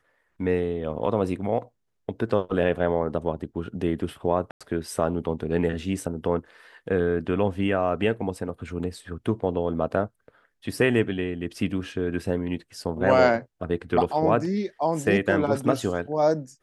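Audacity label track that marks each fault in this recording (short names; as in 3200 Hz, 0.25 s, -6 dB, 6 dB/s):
4.510000	4.610000	gap 96 ms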